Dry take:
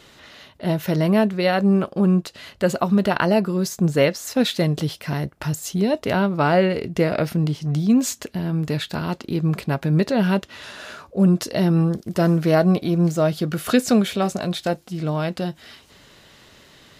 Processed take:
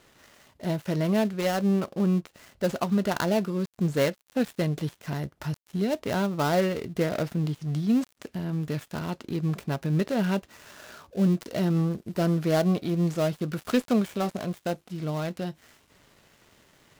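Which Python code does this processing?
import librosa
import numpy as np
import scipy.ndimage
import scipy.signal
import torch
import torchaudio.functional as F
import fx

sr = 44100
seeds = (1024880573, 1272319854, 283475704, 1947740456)

y = fx.dead_time(x, sr, dead_ms=0.13)
y = y * librosa.db_to_amplitude(-6.5)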